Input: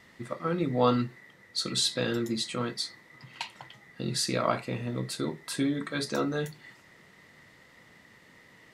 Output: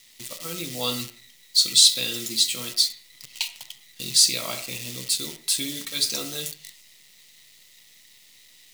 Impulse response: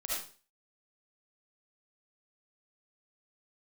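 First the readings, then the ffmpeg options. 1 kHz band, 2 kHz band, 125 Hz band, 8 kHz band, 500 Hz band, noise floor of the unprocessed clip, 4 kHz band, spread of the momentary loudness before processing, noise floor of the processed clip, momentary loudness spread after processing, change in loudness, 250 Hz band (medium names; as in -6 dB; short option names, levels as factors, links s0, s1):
-8.0 dB, +1.5 dB, -7.5 dB, +15.0 dB, -7.5 dB, -57 dBFS, +12.5 dB, 14 LU, -54 dBFS, 19 LU, +8.5 dB, -7.5 dB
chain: -filter_complex "[0:a]acrusher=bits=8:dc=4:mix=0:aa=0.000001,aexciter=amount=10.4:drive=5.6:freq=2300,asplit=2[s0][s1];[1:a]atrim=start_sample=2205,lowpass=2200[s2];[s1][s2]afir=irnorm=-1:irlink=0,volume=0.251[s3];[s0][s3]amix=inputs=2:normalize=0,volume=0.355"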